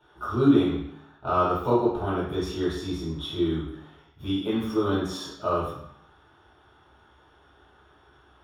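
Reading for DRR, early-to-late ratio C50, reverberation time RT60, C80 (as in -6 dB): -9.5 dB, 1.5 dB, 0.70 s, 6.0 dB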